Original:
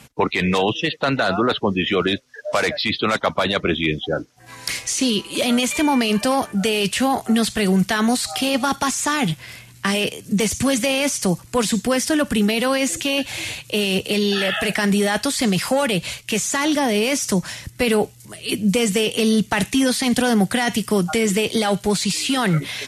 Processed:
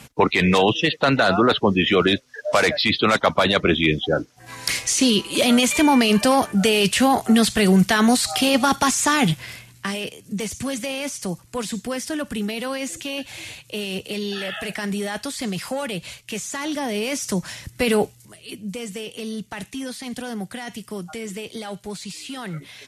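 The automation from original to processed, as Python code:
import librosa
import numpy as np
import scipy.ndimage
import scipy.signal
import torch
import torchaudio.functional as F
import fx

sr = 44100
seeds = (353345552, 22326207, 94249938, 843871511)

y = fx.gain(x, sr, db=fx.line((9.45, 2.0), (9.98, -8.0), (16.59, -8.0), (18.02, -0.5), (18.53, -13.0)))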